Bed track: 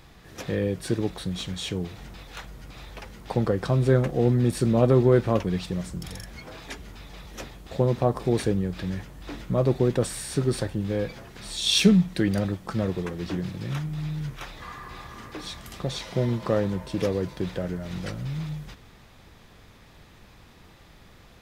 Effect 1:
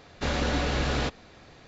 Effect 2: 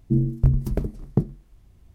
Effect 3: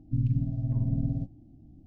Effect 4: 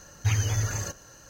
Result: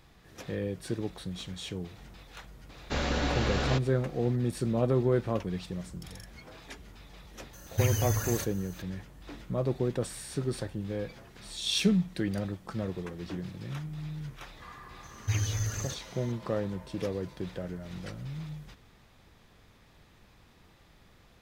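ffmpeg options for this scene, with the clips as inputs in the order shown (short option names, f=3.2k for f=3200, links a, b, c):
-filter_complex "[4:a]asplit=2[a][b];[0:a]volume=-7.5dB[c];[a]aexciter=amount=3.2:drive=6.7:freq=8.3k[d];[b]equalizer=f=880:w=1.1:g=-6.5[e];[1:a]atrim=end=1.67,asetpts=PTS-STARTPTS,volume=-2.5dB,afade=t=in:d=0.004:c=hsin,afade=t=out:st=1.666:d=0.004:c=hsin,adelay=2690[f];[d]atrim=end=1.29,asetpts=PTS-STARTPTS,volume=-3dB,afade=t=in:d=0.004:c=hsin,afade=t=out:st=1.286:d=0.004:c=hsin,adelay=7530[g];[e]atrim=end=1.29,asetpts=PTS-STARTPTS,volume=-4.5dB,afade=t=in:d=0.004:c=hsin,afade=t=out:st=1.286:d=0.004:c=hsin,adelay=15030[h];[c][f][g][h]amix=inputs=4:normalize=0"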